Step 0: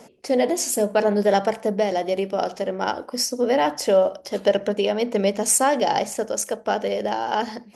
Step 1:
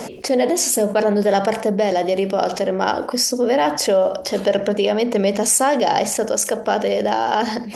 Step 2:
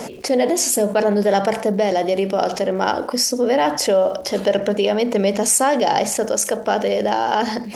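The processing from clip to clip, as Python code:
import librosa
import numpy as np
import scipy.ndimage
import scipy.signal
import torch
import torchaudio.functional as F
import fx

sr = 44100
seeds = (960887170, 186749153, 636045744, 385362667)

y1 = fx.env_flatten(x, sr, amount_pct=50)
y2 = fx.dmg_crackle(y1, sr, seeds[0], per_s=310.0, level_db=-41.0)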